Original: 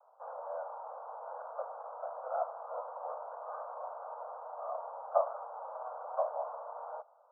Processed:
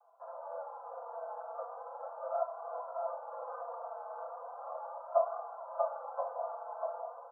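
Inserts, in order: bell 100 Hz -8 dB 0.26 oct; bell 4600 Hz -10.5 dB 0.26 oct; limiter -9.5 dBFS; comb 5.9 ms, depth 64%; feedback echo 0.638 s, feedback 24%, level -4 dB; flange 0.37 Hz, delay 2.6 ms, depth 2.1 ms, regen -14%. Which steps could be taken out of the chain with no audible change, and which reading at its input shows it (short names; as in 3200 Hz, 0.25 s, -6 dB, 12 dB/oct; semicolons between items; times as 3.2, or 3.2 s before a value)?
bell 100 Hz: input band starts at 430 Hz; bell 4600 Hz: input band ends at 1500 Hz; limiter -9.5 dBFS: input peak -14.5 dBFS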